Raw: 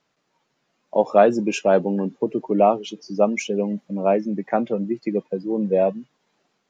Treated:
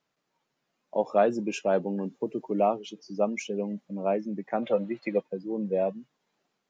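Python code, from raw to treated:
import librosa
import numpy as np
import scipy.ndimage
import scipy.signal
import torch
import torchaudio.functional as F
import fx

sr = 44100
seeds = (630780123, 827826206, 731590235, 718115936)

y = fx.high_shelf(x, sr, hz=6100.0, db=8.5, at=(2.02, 2.68))
y = fx.spec_box(y, sr, start_s=4.63, length_s=0.58, low_hz=480.0, high_hz=4300.0, gain_db=12)
y = y * librosa.db_to_amplitude(-8.0)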